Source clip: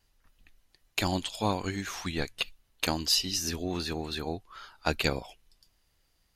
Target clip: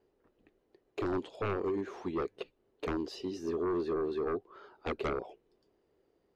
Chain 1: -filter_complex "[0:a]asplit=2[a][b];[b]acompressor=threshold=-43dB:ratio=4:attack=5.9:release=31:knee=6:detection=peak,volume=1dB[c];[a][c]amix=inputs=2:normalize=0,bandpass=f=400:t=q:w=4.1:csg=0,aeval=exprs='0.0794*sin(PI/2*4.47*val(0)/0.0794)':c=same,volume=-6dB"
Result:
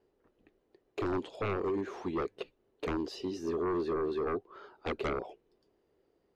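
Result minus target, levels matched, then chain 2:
compressor: peak gain reduction -8 dB
-filter_complex "[0:a]asplit=2[a][b];[b]acompressor=threshold=-53.5dB:ratio=4:attack=5.9:release=31:knee=6:detection=peak,volume=1dB[c];[a][c]amix=inputs=2:normalize=0,bandpass=f=400:t=q:w=4.1:csg=0,aeval=exprs='0.0794*sin(PI/2*4.47*val(0)/0.0794)':c=same,volume=-6dB"

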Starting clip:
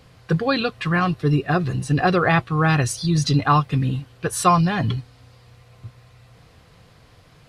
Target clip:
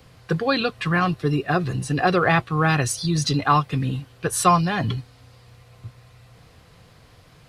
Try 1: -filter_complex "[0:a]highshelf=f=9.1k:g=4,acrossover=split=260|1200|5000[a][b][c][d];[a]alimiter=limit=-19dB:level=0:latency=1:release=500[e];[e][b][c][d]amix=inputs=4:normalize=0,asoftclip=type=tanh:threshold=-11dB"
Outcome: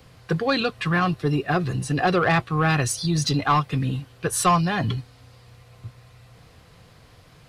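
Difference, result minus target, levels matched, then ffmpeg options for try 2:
soft clip: distortion +15 dB
-filter_complex "[0:a]highshelf=f=9.1k:g=4,acrossover=split=260|1200|5000[a][b][c][d];[a]alimiter=limit=-19dB:level=0:latency=1:release=500[e];[e][b][c][d]amix=inputs=4:normalize=0,asoftclip=type=tanh:threshold=-1.5dB"

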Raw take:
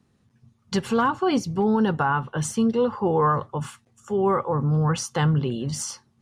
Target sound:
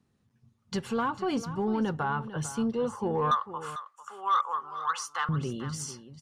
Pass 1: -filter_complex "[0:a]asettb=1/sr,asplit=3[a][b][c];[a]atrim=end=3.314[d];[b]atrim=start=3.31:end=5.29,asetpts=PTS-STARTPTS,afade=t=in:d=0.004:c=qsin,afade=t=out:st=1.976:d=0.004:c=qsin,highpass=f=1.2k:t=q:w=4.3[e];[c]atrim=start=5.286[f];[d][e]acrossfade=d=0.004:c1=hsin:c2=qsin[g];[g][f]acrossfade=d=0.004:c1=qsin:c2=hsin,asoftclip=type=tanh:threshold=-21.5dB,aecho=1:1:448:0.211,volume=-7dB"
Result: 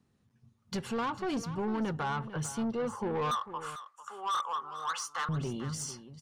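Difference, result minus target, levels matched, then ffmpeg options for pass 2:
soft clip: distortion +9 dB
-filter_complex "[0:a]asettb=1/sr,asplit=3[a][b][c];[a]atrim=end=3.314[d];[b]atrim=start=3.31:end=5.29,asetpts=PTS-STARTPTS,afade=t=in:d=0.004:c=qsin,afade=t=out:st=1.976:d=0.004:c=qsin,highpass=f=1.2k:t=q:w=4.3[e];[c]atrim=start=5.286[f];[d][e]acrossfade=d=0.004:c1=hsin:c2=qsin[g];[g][f]acrossfade=d=0.004:c1=qsin:c2=hsin,asoftclip=type=tanh:threshold=-11dB,aecho=1:1:448:0.211,volume=-7dB"

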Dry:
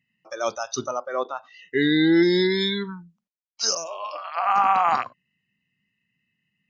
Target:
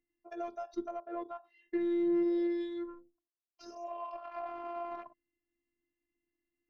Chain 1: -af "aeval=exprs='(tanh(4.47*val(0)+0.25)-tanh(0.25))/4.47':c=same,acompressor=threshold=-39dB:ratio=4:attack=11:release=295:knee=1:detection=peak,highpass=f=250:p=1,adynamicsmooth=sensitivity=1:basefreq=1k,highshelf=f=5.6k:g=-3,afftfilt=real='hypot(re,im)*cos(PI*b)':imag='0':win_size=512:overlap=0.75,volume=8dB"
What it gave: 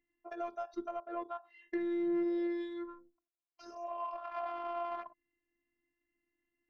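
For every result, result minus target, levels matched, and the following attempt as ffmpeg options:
compressor: peak gain reduction +5 dB; 1000 Hz band +4.0 dB
-af "aeval=exprs='(tanh(4.47*val(0)+0.25)-tanh(0.25))/4.47':c=same,acompressor=threshold=-32.5dB:ratio=4:attack=11:release=295:knee=1:detection=peak,highpass=f=250:p=1,adynamicsmooth=sensitivity=1:basefreq=1k,highshelf=f=5.6k:g=-3,afftfilt=real='hypot(re,im)*cos(PI*b)':imag='0':win_size=512:overlap=0.75,volume=8dB"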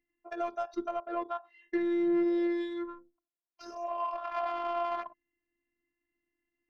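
1000 Hz band +4.5 dB
-af "aeval=exprs='(tanh(4.47*val(0)+0.25)-tanh(0.25))/4.47':c=same,acompressor=threshold=-32.5dB:ratio=4:attack=11:release=295:knee=1:detection=peak,highpass=f=250:p=1,equalizer=f=1.3k:t=o:w=2.3:g=-8.5,adynamicsmooth=sensitivity=1:basefreq=1k,highshelf=f=5.6k:g=-3,afftfilt=real='hypot(re,im)*cos(PI*b)':imag='0':win_size=512:overlap=0.75,volume=8dB"

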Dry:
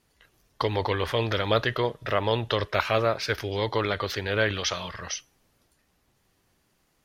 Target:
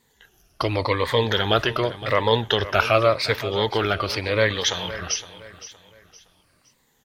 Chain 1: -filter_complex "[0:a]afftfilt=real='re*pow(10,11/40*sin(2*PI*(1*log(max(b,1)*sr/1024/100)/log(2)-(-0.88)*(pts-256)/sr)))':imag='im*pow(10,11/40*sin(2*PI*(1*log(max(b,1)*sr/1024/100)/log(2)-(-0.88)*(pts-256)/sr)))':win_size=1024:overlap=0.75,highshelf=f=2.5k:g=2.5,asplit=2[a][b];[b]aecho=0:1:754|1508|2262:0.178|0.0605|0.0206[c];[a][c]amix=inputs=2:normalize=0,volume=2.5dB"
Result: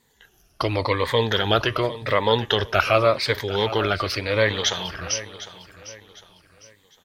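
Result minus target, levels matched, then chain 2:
echo 0.239 s late
-filter_complex "[0:a]afftfilt=real='re*pow(10,11/40*sin(2*PI*(1*log(max(b,1)*sr/1024/100)/log(2)-(-0.88)*(pts-256)/sr)))':imag='im*pow(10,11/40*sin(2*PI*(1*log(max(b,1)*sr/1024/100)/log(2)-(-0.88)*(pts-256)/sr)))':win_size=1024:overlap=0.75,highshelf=f=2.5k:g=2.5,asplit=2[a][b];[b]aecho=0:1:515|1030|1545:0.178|0.0605|0.0206[c];[a][c]amix=inputs=2:normalize=0,volume=2.5dB"

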